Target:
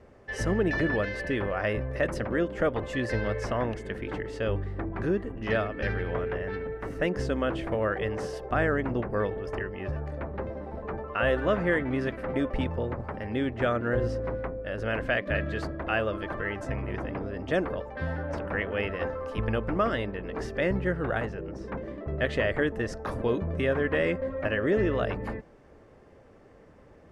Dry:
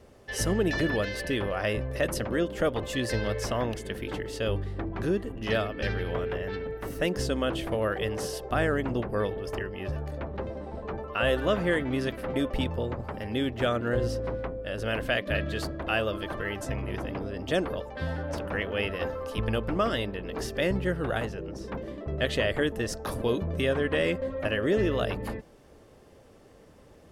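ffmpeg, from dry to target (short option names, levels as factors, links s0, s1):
-af "lowpass=7200,highshelf=f=2600:t=q:w=1.5:g=-6.5"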